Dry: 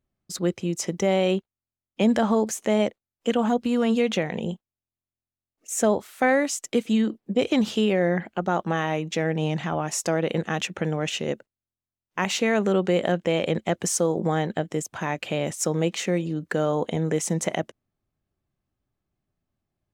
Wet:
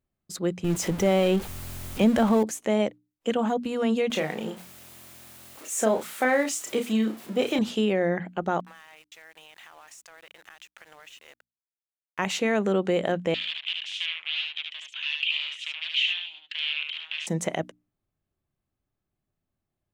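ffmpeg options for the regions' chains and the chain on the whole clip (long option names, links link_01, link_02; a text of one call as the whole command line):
ffmpeg -i in.wav -filter_complex "[0:a]asettb=1/sr,asplit=3[link_01][link_02][link_03];[link_01]atrim=end=0.644[link_04];[link_02]atrim=start=0.64:end=2.43,asetpts=PTS-STARTPTS,afade=type=in:duration=0.004:curve=qsin,afade=type=out:start_time=1.786:duration=0.004:curve=qsin,aeval=exprs='val(0)+0.5*0.0376*sgn(val(0))':channel_layout=same,lowshelf=frequency=120:gain=8.5[link_05];[link_03]atrim=start=2.426[link_06];[link_04][link_05]acrossfade=duration=0.004:curve1=hsin:curve2=qsin[link_07];[link_07][link_06]acrossfade=duration=0.004:curve1=qsin:curve2=hsin,asettb=1/sr,asplit=3[link_08][link_09][link_10];[link_08]atrim=end=4.104[link_11];[link_09]atrim=start=4.1:end=7.59,asetpts=PTS-STARTPTS,afade=type=in:duration=0.004:curve=qsin,afade=type=out:start_time=3.486:duration=0.004:curve=qsin,aeval=exprs='val(0)+0.5*0.0168*sgn(val(0))':channel_layout=same,highpass=frequency=280:poles=1,asplit=2[link_12][link_13];[link_13]adelay=32,volume=-6dB[link_14];[link_12][link_14]amix=inputs=2:normalize=0,atrim=end_sample=153909[link_15];[link_10]atrim=start=7.586[link_16];[link_11][link_15]acrossfade=duration=0.004:curve1=hsin:curve2=qsin[link_17];[link_17][link_16]acrossfade=duration=0.004:curve1=qsin:curve2=hsin,asettb=1/sr,asplit=3[link_18][link_19][link_20];[link_18]atrim=end=8.604[link_21];[link_19]atrim=start=8.6:end=12.19,asetpts=PTS-STARTPTS,afade=type=in:duration=0.004:curve=qsin,afade=type=out:start_time=3.586:duration=0.004:curve=qsin,highpass=1400,acompressor=threshold=-42dB:ratio=8:attack=3.2:release=140:knee=1:detection=peak,aeval=exprs='val(0)*gte(abs(val(0)),0.00299)':channel_layout=same[link_22];[link_20]atrim=start=12.186[link_23];[link_21][link_22]acrossfade=duration=0.004:curve1=hsin:curve2=qsin[link_24];[link_24][link_23]acrossfade=duration=0.004:curve1=qsin:curve2=hsin,asettb=1/sr,asplit=3[link_25][link_26][link_27];[link_25]atrim=end=13.344[link_28];[link_26]atrim=start=13.34:end=17.27,asetpts=PTS-STARTPTS,afade=type=in:duration=0.004:curve=qsin,afade=type=out:start_time=3.926:duration=0.004:curve=qsin,aeval=exprs='0.266*sin(PI/2*5.01*val(0)/0.266)':channel_layout=same,asuperpass=centerf=3000:order=4:qfactor=3.1,aecho=1:1:74:0.631,atrim=end_sample=173313[link_29];[link_27]atrim=start=17.266[link_30];[link_28][link_29]acrossfade=duration=0.004:curve1=hsin:curve2=qsin[link_31];[link_31][link_30]acrossfade=duration=0.004:curve1=qsin:curve2=hsin,equalizer=frequency=5400:width_type=o:width=0.77:gain=-3,bandreject=frequency=60:width_type=h:width=6,bandreject=frequency=120:width_type=h:width=6,bandreject=frequency=180:width_type=h:width=6,bandreject=frequency=240:width_type=h:width=6,bandreject=frequency=300:width_type=h:width=6,volume=-2dB" out.wav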